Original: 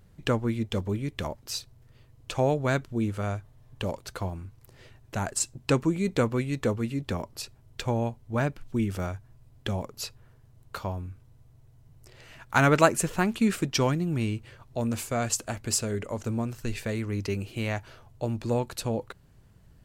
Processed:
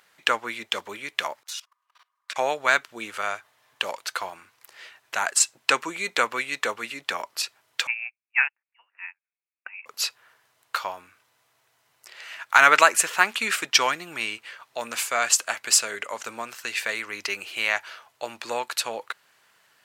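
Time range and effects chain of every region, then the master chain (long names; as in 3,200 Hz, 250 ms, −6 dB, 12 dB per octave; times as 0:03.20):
0:01.43–0:02.36: low-shelf EQ 320 Hz −12 dB + ring modulation 1,100 Hz + output level in coarse steps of 22 dB
0:07.87–0:09.86: high-pass filter 650 Hz 24 dB per octave + voice inversion scrambler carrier 3,200 Hz + expander for the loud parts 2.5 to 1, over −53 dBFS
whole clip: high-pass filter 1,500 Hz 12 dB per octave; high-shelf EQ 3,300 Hz −9.5 dB; boost into a limiter +17.5 dB; level −1 dB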